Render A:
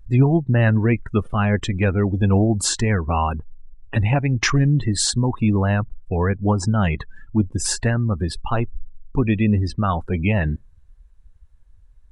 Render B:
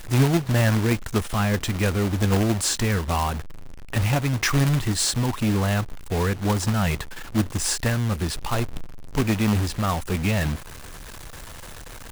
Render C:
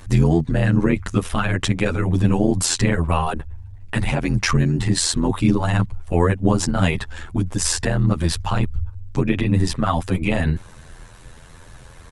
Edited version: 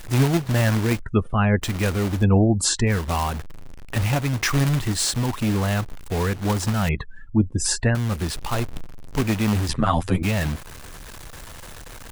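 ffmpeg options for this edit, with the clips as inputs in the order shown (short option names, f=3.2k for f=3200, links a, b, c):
-filter_complex "[0:a]asplit=3[a][b][c];[1:a]asplit=5[d][e][f][g][h];[d]atrim=end=1.002[i];[a]atrim=start=0.998:end=1.622[j];[e]atrim=start=1.618:end=2.25[k];[b]atrim=start=2.15:end=2.96[l];[f]atrim=start=2.86:end=6.892[m];[c]atrim=start=6.888:end=7.952[n];[g]atrim=start=7.948:end=9.692[o];[2:a]atrim=start=9.688:end=10.232[p];[h]atrim=start=10.228[q];[i][j]acrossfade=d=0.004:c1=hsin:c2=hsin[r];[r][k]acrossfade=d=0.004:c1=hsin:c2=hsin[s];[s][l]acrossfade=d=0.1:c1=tri:c2=tri[t];[t][m]acrossfade=d=0.1:c1=tri:c2=tri[u];[u][n]acrossfade=d=0.004:c1=hsin:c2=hsin[v];[v][o]acrossfade=d=0.004:c1=hsin:c2=hsin[w];[w][p]acrossfade=d=0.004:c1=hsin:c2=hsin[x];[x][q]acrossfade=d=0.004:c1=hsin:c2=hsin"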